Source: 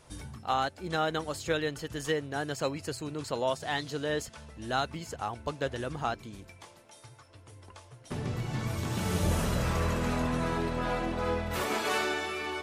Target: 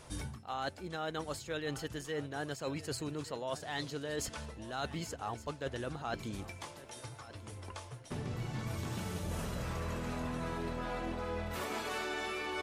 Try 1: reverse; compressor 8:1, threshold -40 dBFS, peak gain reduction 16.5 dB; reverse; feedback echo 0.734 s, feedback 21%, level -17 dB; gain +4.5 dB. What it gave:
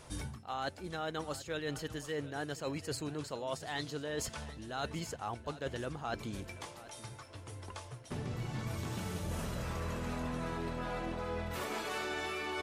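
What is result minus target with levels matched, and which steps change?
echo 0.434 s early
change: feedback echo 1.168 s, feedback 21%, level -17 dB

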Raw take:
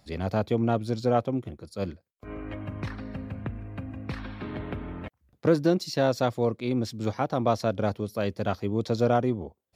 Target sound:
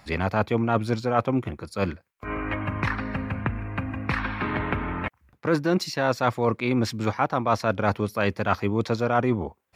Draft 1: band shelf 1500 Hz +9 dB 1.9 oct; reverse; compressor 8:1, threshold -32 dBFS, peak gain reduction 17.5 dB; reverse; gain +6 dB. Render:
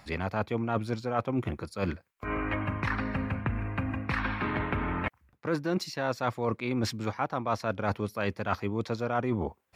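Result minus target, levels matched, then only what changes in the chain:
compressor: peak gain reduction +7 dB
change: compressor 8:1, threshold -24 dBFS, peak gain reduction 10.5 dB

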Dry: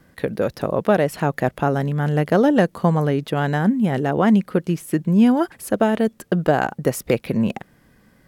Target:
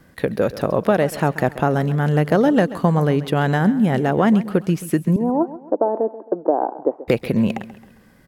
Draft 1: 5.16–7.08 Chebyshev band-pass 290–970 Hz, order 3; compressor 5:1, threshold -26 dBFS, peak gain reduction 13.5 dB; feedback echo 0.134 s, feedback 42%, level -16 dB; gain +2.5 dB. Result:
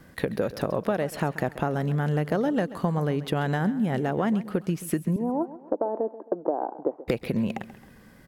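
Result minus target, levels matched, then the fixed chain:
compressor: peak gain reduction +9.5 dB
5.16–7.08 Chebyshev band-pass 290–970 Hz, order 3; compressor 5:1, threshold -14 dBFS, peak gain reduction 3.5 dB; feedback echo 0.134 s, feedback 42%, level -16 dB; gain +2.5 dB

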